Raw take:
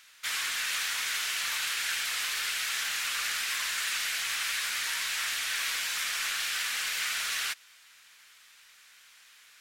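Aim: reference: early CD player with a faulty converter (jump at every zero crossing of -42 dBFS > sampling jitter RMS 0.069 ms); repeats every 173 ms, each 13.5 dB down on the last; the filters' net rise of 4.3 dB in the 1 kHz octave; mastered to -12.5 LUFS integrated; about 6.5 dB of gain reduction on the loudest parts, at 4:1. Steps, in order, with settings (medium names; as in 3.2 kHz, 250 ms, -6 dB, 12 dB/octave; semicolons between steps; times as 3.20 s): peaking EQ 1 kHz +6 dB; compression 4:1, threshold -35 dBFS; feedback delay 173 ms, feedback 21%, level -13.5 dB; jump at every zero crossing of -42 dBFS; sampling jitter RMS 0.069 ms; trim +21.5 dB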